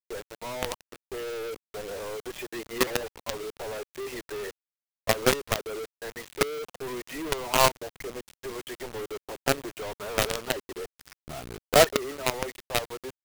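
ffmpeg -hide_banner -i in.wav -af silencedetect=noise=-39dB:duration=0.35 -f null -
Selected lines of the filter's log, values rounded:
silence_start: 4.51
silence_end: 5.07 | silence_duration: 0.57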